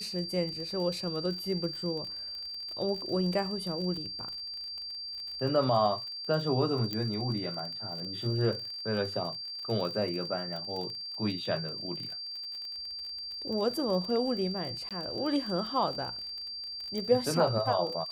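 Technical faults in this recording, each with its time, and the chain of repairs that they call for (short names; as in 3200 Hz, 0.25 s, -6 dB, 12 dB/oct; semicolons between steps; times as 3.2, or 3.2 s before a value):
crackle 34/s -37 dBFS
tone 4700 Hz -37 dBFS
6.93 pop -19 dBFS
14.89–14.91 gap 17 ms
16.98 pop -25 dBFS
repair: de-click; notch 4700 Hz, Q 30; interpolate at 14.89, 17 ms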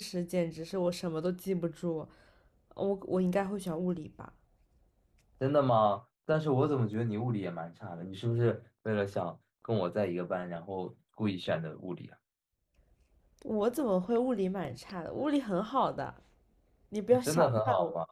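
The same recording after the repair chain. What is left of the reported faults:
6.93 pop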